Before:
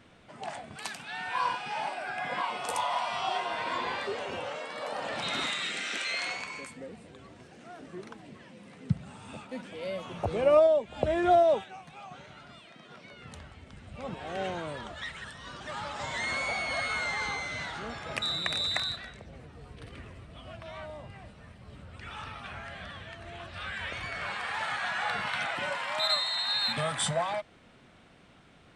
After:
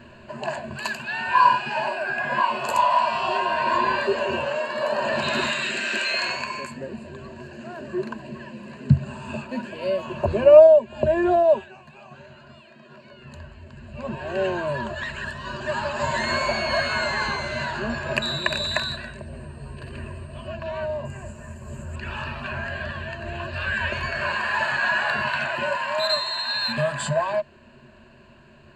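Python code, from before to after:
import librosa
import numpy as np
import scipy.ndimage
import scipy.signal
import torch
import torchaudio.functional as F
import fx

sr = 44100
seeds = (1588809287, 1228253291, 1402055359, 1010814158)

y = fx.dmg_tone(x, sr, hz=8500.0, level_db=-57.0, at=(18.41, 20.46), fade=0.02)
y = fx.high_shelf_res(y, sr, hz=5500.0, db=10.5, q=3.0, at=(21.05, 21.96))
y = fx.ripple_eq(y, sr, per_octave=1.4, db=15)
y = fx.rider(y, sr, range_db=4, speed_s=2.0)
y = fx.high_shelf(y, sr, hz=3700.0, db=-9.0)
y = y * 10.0 ** (5.5 / 20.0)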